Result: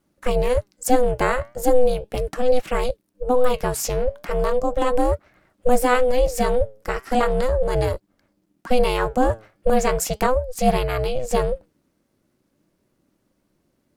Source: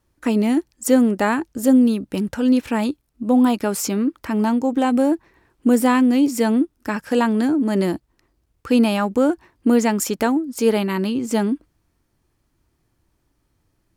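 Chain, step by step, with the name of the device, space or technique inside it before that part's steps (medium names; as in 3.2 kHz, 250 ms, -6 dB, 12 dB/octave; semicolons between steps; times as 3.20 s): alien voice (ring modulator 250 Hz; flange 0.37 Hz, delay 0.6 ms, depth 8.9 ms, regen +85%); trim +6.5 dB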